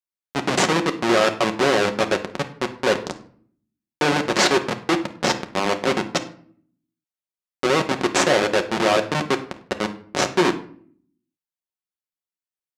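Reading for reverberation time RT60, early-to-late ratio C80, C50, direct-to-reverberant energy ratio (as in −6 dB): 0.55 s, 17.5 dB, 12.5 dB, 5.5 dB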